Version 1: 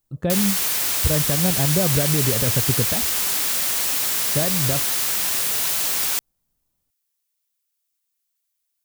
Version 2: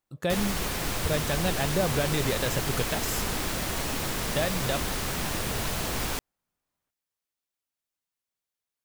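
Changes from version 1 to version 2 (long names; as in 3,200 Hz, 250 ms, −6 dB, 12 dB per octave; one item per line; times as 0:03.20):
speech: add spectral tilt +3.5 dB per octave
background: add spectral tilt −4 dB per octave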